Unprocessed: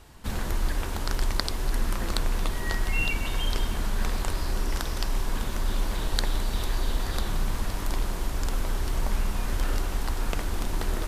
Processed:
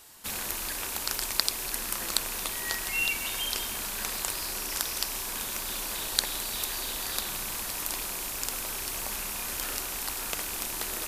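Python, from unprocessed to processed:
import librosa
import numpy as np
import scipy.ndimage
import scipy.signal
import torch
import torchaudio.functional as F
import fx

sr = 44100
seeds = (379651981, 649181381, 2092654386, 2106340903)

y = fx.rattle_buzz(x, sr, strikes_db=-30.0, level_db=-29.0)
y = fx.riaa(y, sr, side='recording')
y = y * librosa.db_to_amplitude(-3.0)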